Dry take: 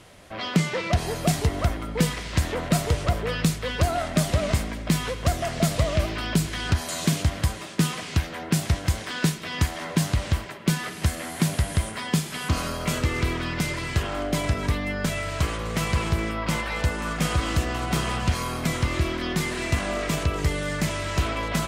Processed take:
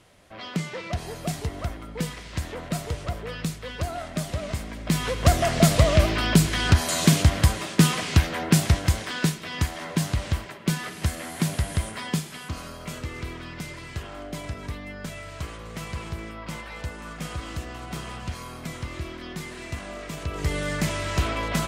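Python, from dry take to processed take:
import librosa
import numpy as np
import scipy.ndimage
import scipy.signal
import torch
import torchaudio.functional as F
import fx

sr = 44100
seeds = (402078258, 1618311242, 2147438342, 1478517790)

y = fx.gain(x, sr, db=fx.line((4.57, -7.0), (5.28, 5.0), (8.44, 5.0), (9.46, -2.0), (12.08, -2.0), (12.53, -9.5), (20.15, -9.5), (20.56, 0.0)))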